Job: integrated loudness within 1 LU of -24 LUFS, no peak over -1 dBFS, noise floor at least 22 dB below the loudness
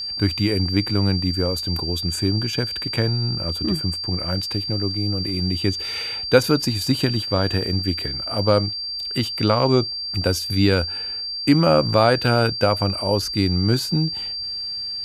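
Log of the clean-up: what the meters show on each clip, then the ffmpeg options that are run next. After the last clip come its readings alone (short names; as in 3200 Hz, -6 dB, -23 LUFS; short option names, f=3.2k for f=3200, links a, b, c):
steady tone 4700 Hz; tone level -26 dBFS; loudness -21.0 LUFS; peak -1.0 dBFS; loudness target -24.0 LUFS
-> -af "bandreject=f=4.7k:w=30"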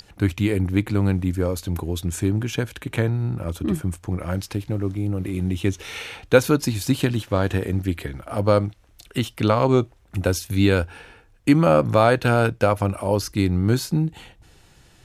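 steady tone none; loudness -22.5 LUFS; peak -1.5 dBFS; loudness target -24.0 LUFS
-> -af "volume=-1.5dB"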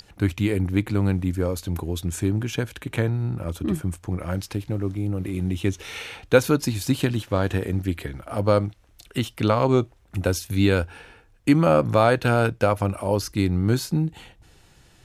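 loudness -24.0 LUFS; peak -3.0 dBFS; noise floor -56 dBFS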